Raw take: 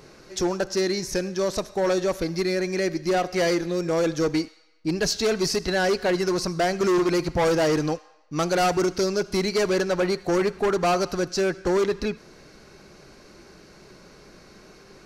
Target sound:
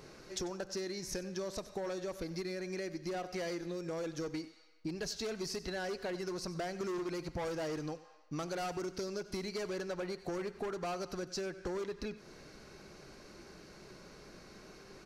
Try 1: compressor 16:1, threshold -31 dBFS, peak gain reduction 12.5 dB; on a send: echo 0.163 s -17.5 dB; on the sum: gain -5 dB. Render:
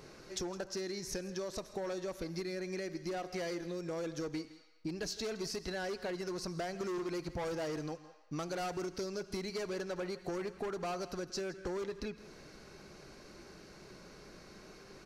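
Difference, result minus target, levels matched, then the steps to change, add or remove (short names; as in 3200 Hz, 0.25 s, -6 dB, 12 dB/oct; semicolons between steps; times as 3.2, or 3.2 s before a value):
echo 70 ms late
change: echo 93 ms -17.5 dB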